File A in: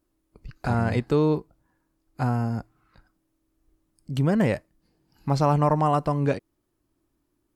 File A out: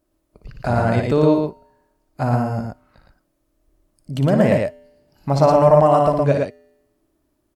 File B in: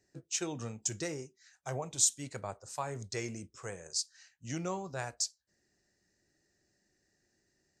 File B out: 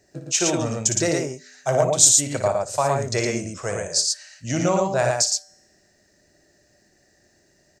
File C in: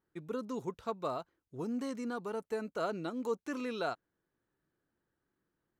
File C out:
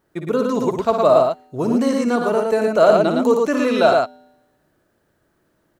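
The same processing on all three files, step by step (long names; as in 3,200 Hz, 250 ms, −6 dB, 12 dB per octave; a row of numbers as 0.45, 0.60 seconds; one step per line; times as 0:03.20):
parametric band 620 Hz +10.5 dB 0.3 octaves
tuned comb filter 84 Hz, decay 1.1 s, harmonics odd, mix 30%
loudspeakers that aren't time-aligned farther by 20 metres −7 dB, 39 metres −3 dB
normalise the peak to −1.5 dBFS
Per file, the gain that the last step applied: +5.5, +15.5, +19.0 decibels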